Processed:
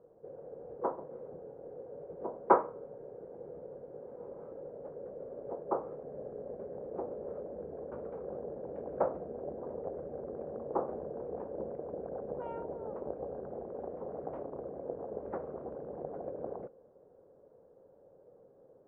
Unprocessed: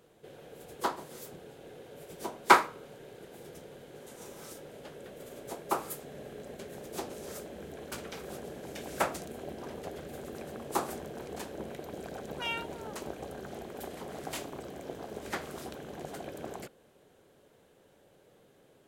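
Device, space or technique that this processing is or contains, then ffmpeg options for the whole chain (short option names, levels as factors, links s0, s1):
under water: -af "lowpass=f=1100:w=0.5412,lowpass=f=1100:w=1.3066,equalizer=f=510:t=o:w=0.55:g=11,volume=0.631"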